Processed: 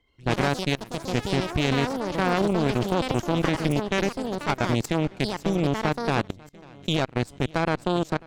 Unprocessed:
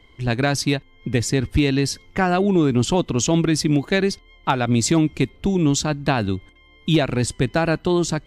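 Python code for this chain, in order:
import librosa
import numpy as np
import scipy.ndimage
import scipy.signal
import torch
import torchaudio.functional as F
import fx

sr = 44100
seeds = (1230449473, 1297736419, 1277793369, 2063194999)

p1 = fx.cheby_harmonics(x, sr, harmonics=(2, 3, 6, 7), levels_db=(-6, -16, -43, -41), full_scale_db=-6.5)
p2 = p1 + fx.echo_feedback(p1, sr, ms=544, feedback_pct=57, wet_db=-18, dry=0)
p3 = fx.level_steps(p2, sr, step_db=23)
y = fx.echo_pitch(p3, sr, ms=84, semitones=5, count=3, db_per_echo=-6.0)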